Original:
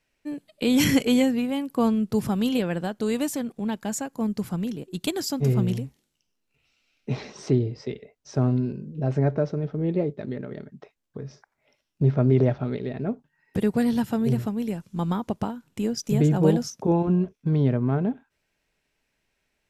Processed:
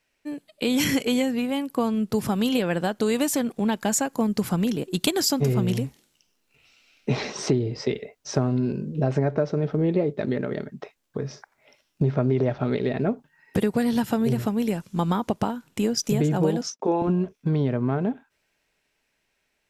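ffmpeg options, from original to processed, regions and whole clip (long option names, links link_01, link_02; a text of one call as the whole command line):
ffmpeg -i in.wav -filter_complex "[0:a]asettb=1/sr,asplit=3[link_01][link_02][link_03];[link_01]atrim=end=16.614[link_04];[link_02]atrim=start=16.61:end=17.02,asetpts=PTS-STARTPTS,afade=type=in:duration=0.004:curve=qsin,afade=type=out:start_time=0.406:duration=0.004:curve=qsin,agate=range=-33dB:threshold=-37dB:ratio=3:release=100:detection=peak,highpass=320,lowpass=6100[link_05];[link_03]atrim=start=17.016[link_06];[link_04][link_05]acrossfade=duration=0.004:curve1=hsin:curve2=qsin[link_07];[link_07][link_06]acrossfade=duration=0.004:curve1=qsin:curve2=hsin,dynaudnorm=framelen=490:gausssize=11:maxgain=11.5dB,lowshelf=frequency=250:gain=-7,acompressor=threshold=-21dB:ratio=6,volume=2.5dB" out.wav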